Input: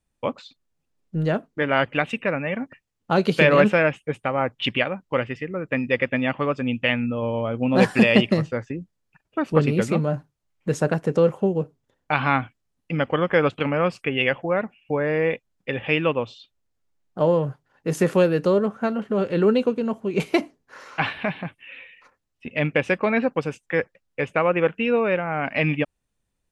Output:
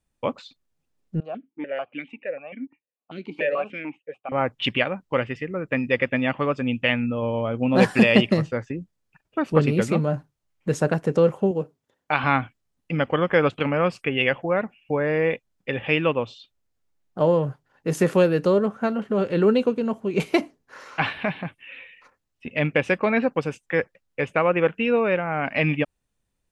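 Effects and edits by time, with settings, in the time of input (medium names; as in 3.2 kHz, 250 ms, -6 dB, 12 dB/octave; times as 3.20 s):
1.20–4.32 s: stepped vowel filter 6.8 Hz
11.51–12.24 s: high-pass 220 Hz 6 dB/octave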